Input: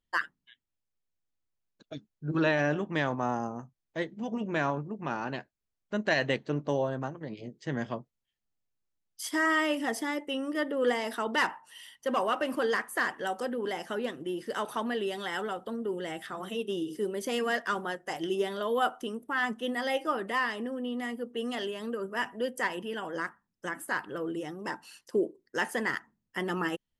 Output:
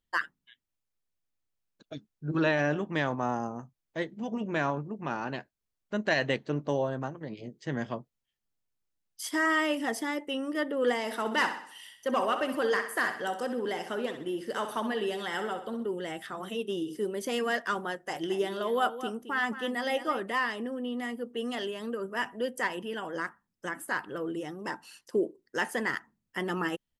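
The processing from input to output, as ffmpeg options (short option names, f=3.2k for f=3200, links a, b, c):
-filter_complex "[0:a]asplit=3[a][b][c];[a]afade=t=out:st=11.07:d=0.02[d];[b]aecho=1:1:64|128|192|256|320:0.335|0.154|0.0709|0.0326|0.015,afade=t=in:st=11.07:d=0.02,afade=t=out:st=15.86:d=0.02[e];[c]afade=t=in:st=15.86:d=0.02[f];[d][e][f]amix=inputs=3:normalize=0,asettb=1/sr,asplit=3[g][h][i];[g]atrim=end=17.924[j];[h]atrim=start=17.92:end=20.23,asetpts=PTS-STARTPTS,afade=t=in:d=0.004:c=qsin,afade=t=out:st=2.306:d=0.004:c=qsin,aecho=1:1:218:0.251,atrim=end_sample=101871[k];[i]atrim=start=20.226[l];[j][k]acrossfade=d=0.004:c1=hsin:c2=qsin[m];[m][l]acrossfade=d=0.004:c1=qsin:c2=hsin"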